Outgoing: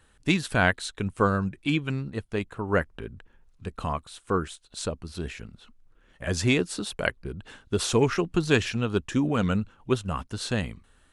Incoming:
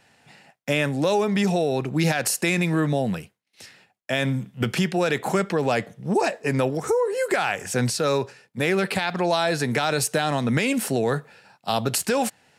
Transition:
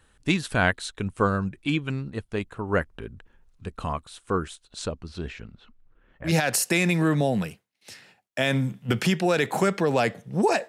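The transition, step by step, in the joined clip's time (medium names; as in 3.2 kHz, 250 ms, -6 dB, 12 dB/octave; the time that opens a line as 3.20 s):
outgoing
4.68–6.33 s: low-pass 9.5 kHz -> 1.8 kHz
6.28 s: go over to incoming from 2.00 s, crossfade 0.10 s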